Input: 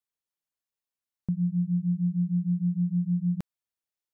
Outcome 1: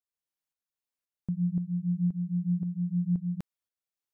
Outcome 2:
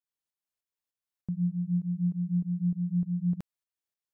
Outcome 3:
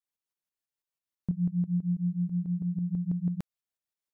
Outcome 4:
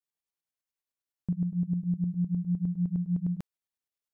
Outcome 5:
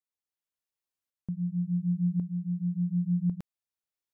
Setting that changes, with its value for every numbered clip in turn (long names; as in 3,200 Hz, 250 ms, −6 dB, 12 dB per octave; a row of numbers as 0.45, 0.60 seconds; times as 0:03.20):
shaped tremolo, speed: 1.9, 3.3, 6.1, 9.8, 0.91 Hertz